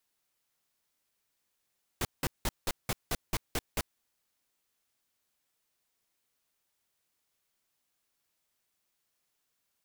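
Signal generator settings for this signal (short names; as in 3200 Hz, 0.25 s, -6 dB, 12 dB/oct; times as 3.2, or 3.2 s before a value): noise bursts pink, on 0.04 s, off 0.18 s, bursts 9, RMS -30 dBFS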